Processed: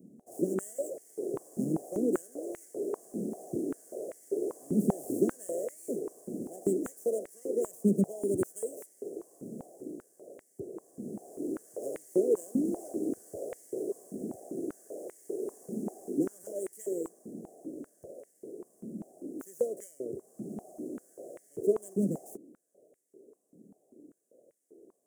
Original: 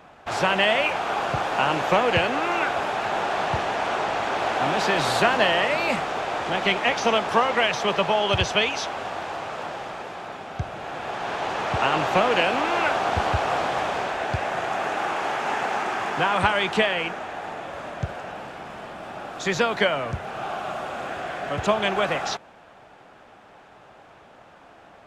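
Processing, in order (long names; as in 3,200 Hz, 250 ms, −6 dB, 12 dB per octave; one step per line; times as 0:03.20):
running median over 9 samples
inverse Chebyshev band-stop filter 850–3,900 Hz, stop band 50 dB
high-pass on a step sequencer 5.1 Hz 210–2,000 Hz
level −2 dB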